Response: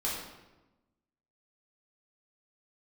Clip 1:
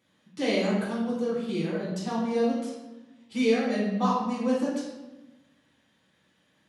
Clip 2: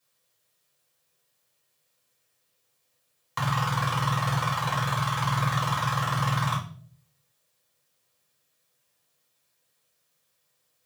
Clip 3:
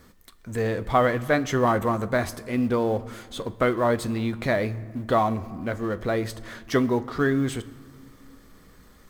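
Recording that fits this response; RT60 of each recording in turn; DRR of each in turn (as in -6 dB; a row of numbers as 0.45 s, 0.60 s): 1; 1.1 s, 0.55 s, 2.0 s; -7.0 dB, -7.0 dB, 13.0 dB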